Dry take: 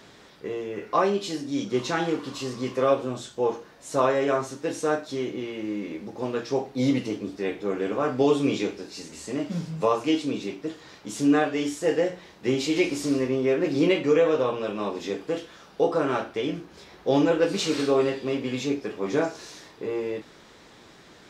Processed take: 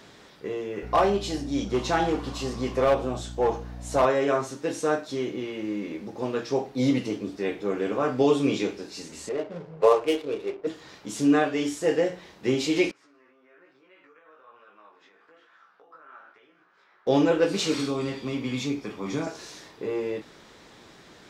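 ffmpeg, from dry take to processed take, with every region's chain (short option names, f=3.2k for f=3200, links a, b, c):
-filter_complex "[0:a]asettb=1/sr,asplit=3[a][b][c];[a]atrim=end=0.834[d];[b]atrim=start=0.83:end=4.05,asetpts=PTS-STARTPTS,afade=t=in:d=0.004:c=qsin,afade=t=out:st=3.216:d=0.004:c=qsin,asoftclip=type=hard:threshold=-18.5dB,aeval=exprs='val(0)+0.0141*(sin(2*PI*60*n/s)+sin(2*PI*2*60*n/s)/2+sin(2*PI*3*60*n/s)/3+sin(2*PI*4*60*n/s)/4+sin(2*PI*5*60*n/s)/5)':c=same,equalizer=f=740:t=o:w=0.49:g=8[e];[c]atrim=start=4.046[f];[d][e]acrossfade=d=0.004:c1=hsin:c2=qsin[g];[g][f]acrossfade=d=0.004:c1=qsin:c2=hsin,asettb=1/sr,asplit=3[h][i][j];[h]atrim=end=9.294[k];[i]atrim=start=9.29:end=10.67,asetpts=PTS-STARTPTS,afade=t=in:d=0.004:c=qsin,afade=t=out:st=1.376:d=0.004:c=qsin,lowshelf=f=330:t=q:w=3:g=-8.5,adynamicsmooth=sensitivity=6:basefreq=850[l];[j]atrim=start=10.666[m];[k][l]acrossfade=d=0.004:c1=hsin:c2=qsin[n];[n][m]acrossfade=d=0.004:c1=qsin:c2=hsin,asettb=1/sr,asplit=3[o][p][q];[o]atrim=end=12.914[r];[p]atrim=start=12.91:end=17.07,asetpts=PTS-STARTPTS,afade=t=in:d=0.004:c=qsin,afade=t=out:st=4.156:d=0.004:c=qsin,acompressor=threshold=-34dB:ratio=10:attack=3.2:release=140:knee=1:detection=peak,bandpass=f=1.4k:t=q:w=2.7,flanger=delay=15.5:depth=3.7:speed=1.1[s];[q]atrim=start=17.066[t];[r][s]acrossfade=d=0.004:c1=hsin:c2=qsin[u];[u][t]acrossfade=d=0.004:c1=qsin:c2=hsin,asettb=1/sr,asplit=3[v][w][x];[v]atrim=end=17.744[y];[w]atrim=start=17.74:end=19.27,asetpts=PTS-STARTPTS,afade=t=in:d=0.004:c=qsin,afade=t=out:st=1.526:d=0.004:c=qsin,aecho=1:1:0.9:0.35,atrim=end_sample=67473,acrossover=split=340|3000[z][aa][ab];[aa]acompressor=threshold=-33dB:ratio=3:attack=3.2:release=140:knee=2.83:detection=peak[ac];[z][ac][ab]amix=inputs=3:normalize=0,equalizer=f=390:t=o:w=0.4:g=-3.5[ad];[x]atrim=start=19.266[ae];[y][ad]acrossfade=d=0.004:c1=hsin:c2=qsin[af];[af][ae]acrossfade=d=0.004:c1=qsin:c2=hsin"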